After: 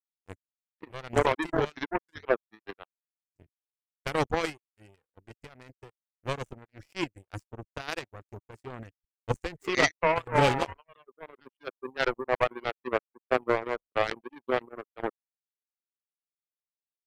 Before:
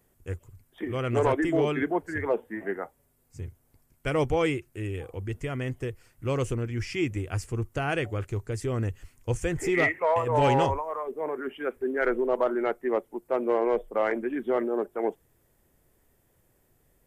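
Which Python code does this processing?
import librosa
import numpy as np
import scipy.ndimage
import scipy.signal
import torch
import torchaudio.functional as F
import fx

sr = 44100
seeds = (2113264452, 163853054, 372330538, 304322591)

y = fx.dereverb_blind(x, sr, rt60_s=1.4)
y = fx.power_curve(y, sr, exponent=3.0)
y = y * librosa.db_to_amplitude(8.5)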